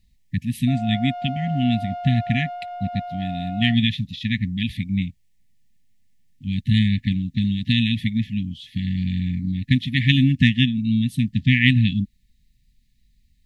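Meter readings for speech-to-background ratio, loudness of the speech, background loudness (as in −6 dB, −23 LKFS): 11.0 dB, −22.0 LKFS, −33.0 LKFS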